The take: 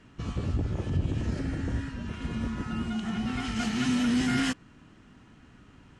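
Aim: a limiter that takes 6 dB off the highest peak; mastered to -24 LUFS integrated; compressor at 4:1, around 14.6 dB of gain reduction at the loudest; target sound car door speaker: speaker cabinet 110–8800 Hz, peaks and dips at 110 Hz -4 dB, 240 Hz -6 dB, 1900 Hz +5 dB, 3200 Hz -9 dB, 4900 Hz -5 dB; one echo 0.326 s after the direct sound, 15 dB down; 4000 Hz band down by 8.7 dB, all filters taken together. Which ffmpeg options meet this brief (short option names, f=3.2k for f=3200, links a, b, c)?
-af "equalizer=f=4k:t=o:g=-4.5,acompressor=threshold=-41dB:ratio=4,alimiter=level_in=12dB:limit=-24dB:level=0:latency=1,volume=-12dB,highpass=110,equalizer=f=110:t=q:w=4:g=-4,equalizer=f=240:t=q:w=4:g=-6,equalizer=f=1.9k:t=q:w=4:g=5,equalizer=f=3.2k:t=q:w=4:g=-9,equalizer=f=4.9k:t=q:w=4:g=-5,lowpass=f=8.8k:w=0.5412,lowpass=f=8.8k:w=1.3066,aecho=1:1:326:0.178,volume=25dB"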